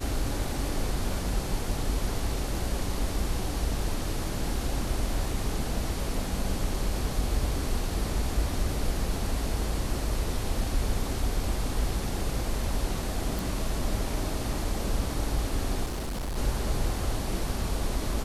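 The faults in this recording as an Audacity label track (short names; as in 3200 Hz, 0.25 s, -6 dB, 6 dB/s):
13.390000	13.390000	pop
15.840000	16.380000	clipped -29 dBFS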